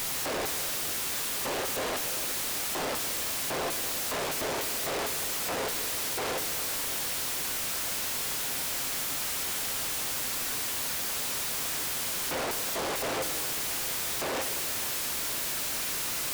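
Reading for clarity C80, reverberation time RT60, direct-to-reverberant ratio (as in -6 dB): 11.0 dB, 2.6 s, 7.5 dB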